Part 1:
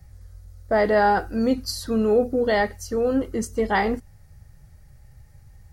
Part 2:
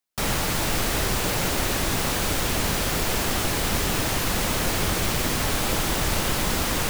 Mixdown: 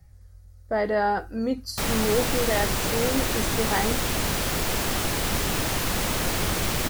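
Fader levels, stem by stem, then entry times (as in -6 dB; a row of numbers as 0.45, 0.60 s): -5.0, -1.5 dB; 0.00, 1.60 s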